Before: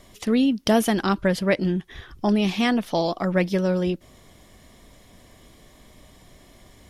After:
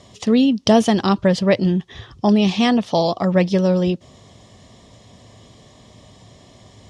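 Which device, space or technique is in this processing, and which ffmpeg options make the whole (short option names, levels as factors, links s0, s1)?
car door speaker: -af "highpass=82,equalizer=f=110:t=q:w=4:g=8,equalizer=f=320:t=q:w=4:g=-5,equalizer=f=1500:t=q:w=4:g=-9,equalizer=f=2200:t=q:w=4:g=-6,lowpass=f=7500:w=0.5412,lowpass=f=7500:w=1.3066,volume=2"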